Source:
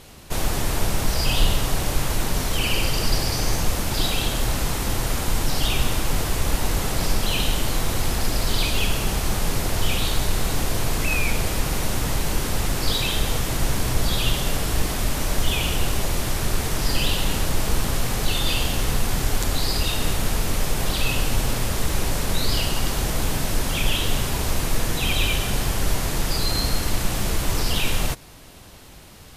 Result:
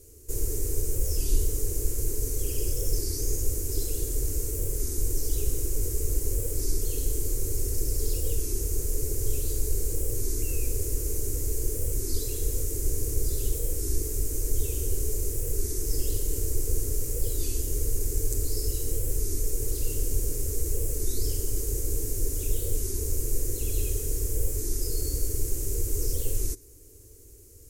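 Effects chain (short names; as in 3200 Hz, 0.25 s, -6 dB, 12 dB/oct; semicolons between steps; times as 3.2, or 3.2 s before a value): EQ curve 100 Hz 0 dB, 160 Hz -27 dB, 260 Hz -6 dB, 410 Hz +4 dB, 670 Hz -28 dB, 1100 Hz -24 dB, 2200 Hz -19 dB, 3300 Hz -24 dB, 6400 Hz +2 dB; varispeed +6%; record warp 33 1/3 rpm, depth 160 cents; gain -4 dB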